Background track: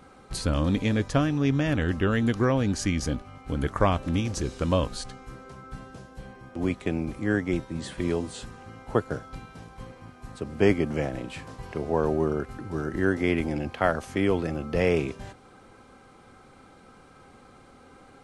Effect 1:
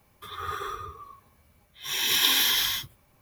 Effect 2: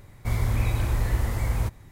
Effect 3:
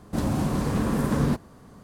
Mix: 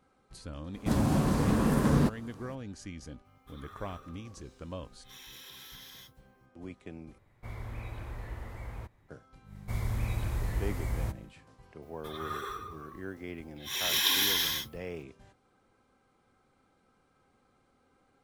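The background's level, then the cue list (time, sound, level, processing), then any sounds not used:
background track −17 dB
0:00.73: mix in 3 −1.5 dB, fades 0.02 s
0:03.25: mix in 1 −16.5 dB + downward compressor, threshold −30 dBFS
0:07.18: overwrite with 2 −12 dB + bass and treble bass −5 dB, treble −11 dB
0:09.43: mix in 2 −8 dB, fades 0.10 s + hum with harmonics 50 Hz, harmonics 4, −40 dBFS 0 dB per octave
0:11.82: mix in 1 −4.5 dB

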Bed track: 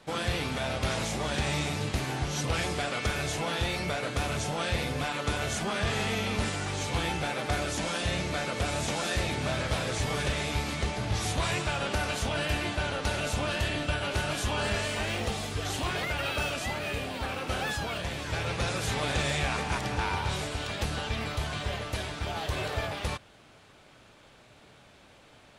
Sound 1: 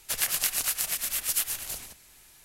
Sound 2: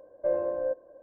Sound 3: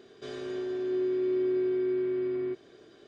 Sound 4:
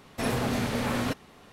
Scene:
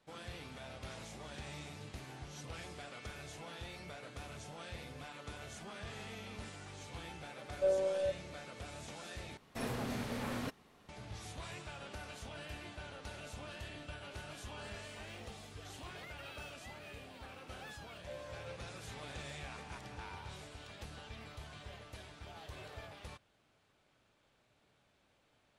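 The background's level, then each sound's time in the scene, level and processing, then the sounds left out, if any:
bed track −17.5 dB
0:07.38: mix in 2 −3 dB + phases set to zero 191 Hz
0:09.37: overwrite with 4 −11 dB
0:17.83: mix in 2 −9.5 dB + high-pass filter 1,100 Hz
not used: 1, 3

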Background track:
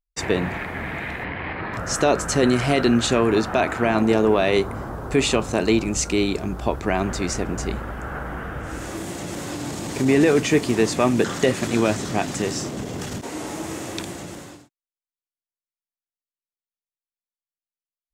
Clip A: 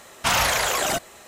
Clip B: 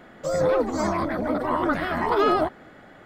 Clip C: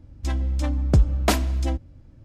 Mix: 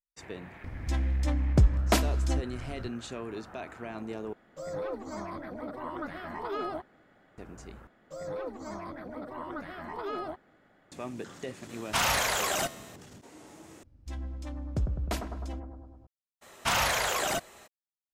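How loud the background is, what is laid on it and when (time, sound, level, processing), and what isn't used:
background track −20 dB
0:00.64: mix in C −4 dB + upward compression 4 to 1, threshold −27 dBFS
0:04.33: overwrite with B −14 dB
0:07.87: overwrite with B −15.5 dB
0:11.69: mix in A −0.5 dB + tuned comb filter 83 Hz, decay 1.6 s, mix 50%
0:13.83: overwrite with C −13.5 dB + bucket-brigade delay 103 ms, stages 1,024, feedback 64%, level −5.5 dB
0:16.41: mix in A −5.5 dB, fades 0.02 s + parametric band 12,000 Hz −2.5 dB 2.3 octaves

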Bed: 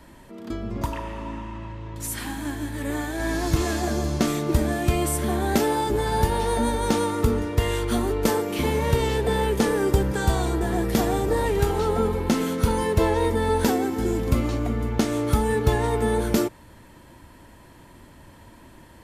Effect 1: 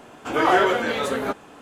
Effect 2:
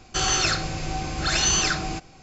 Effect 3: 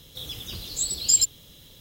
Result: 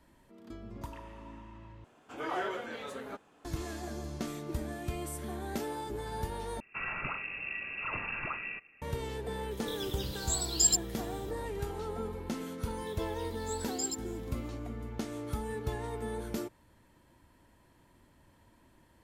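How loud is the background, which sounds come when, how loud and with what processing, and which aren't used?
bed −15 dB
0:01.84: overwrite with 1 −17 dB
0:06.60: overwrite with 2 −11.5 dB + voice inversion scrambler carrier 2,700 Hz
0:09.51: mix in 3 −6 dB
0:12.70: mix in 3 −17 dB

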